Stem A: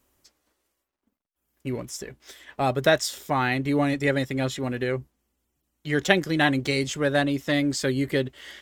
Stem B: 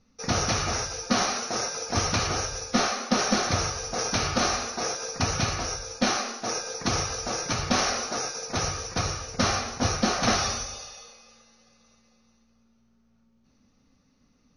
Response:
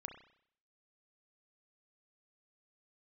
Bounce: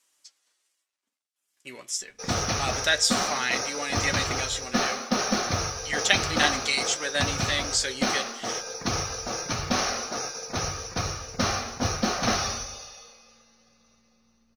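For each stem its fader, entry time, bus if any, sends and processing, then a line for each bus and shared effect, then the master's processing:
-3.0 dB, 0.00 s, send -7.5 dB, weighting filter ITU-R 468; flange 0.32 Hz, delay 5.9 ms, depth 7.3 ms, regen +48%
-1.5 dB, 2.00 s, no send, modulation noise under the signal 30 dB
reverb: on, RT60 0.65 s, pre-delay 31 ms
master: dry

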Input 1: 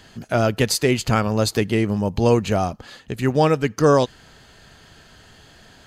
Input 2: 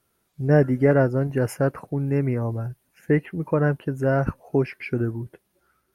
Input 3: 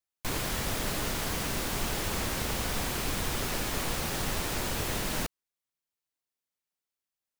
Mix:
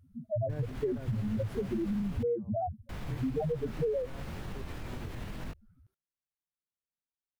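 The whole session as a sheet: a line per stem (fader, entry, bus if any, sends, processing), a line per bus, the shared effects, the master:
+2.0 dB, 0.00 s, no bus, no send, median filter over 25 samples; loudest bins only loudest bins 1
-17.0 dB, 0.00 s, bus A, no send, low shelf 130 Hz +7 dB; auto duck -14 dB, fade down 1.70 s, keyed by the first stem
-13.0 dB, 0.25 s, muted 2.23–2.89, bus A, no send, tone controls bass +9 dB, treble -12 dB; chorus 1.9 Hz, delay 20 ms, depth 6.1 ms
bus A: 0.0 dB, AGC gain up to 5 dB; limiter -30.5 dBFS, peak gain reduction 9 dB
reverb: off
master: compressor 6:1, threshold -29 dBFS, peak gain reduction 11 dB

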